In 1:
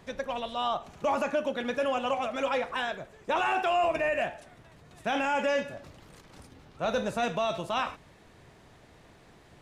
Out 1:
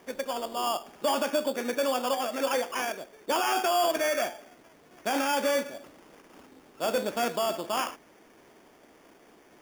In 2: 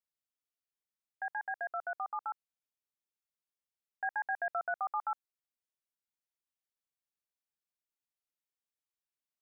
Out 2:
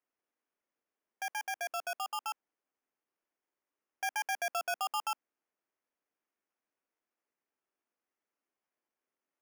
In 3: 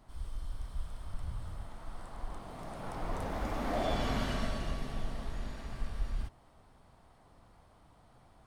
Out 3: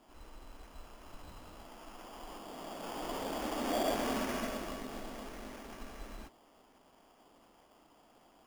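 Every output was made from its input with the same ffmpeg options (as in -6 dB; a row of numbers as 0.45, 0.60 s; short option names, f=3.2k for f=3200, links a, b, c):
-af "acrusher=samples=11:mix=1:aa=0.000001,lowshelf=f=180:t=q:w=1.5:g=-14"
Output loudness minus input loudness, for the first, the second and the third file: +1.0, +1.0, +0.5 LU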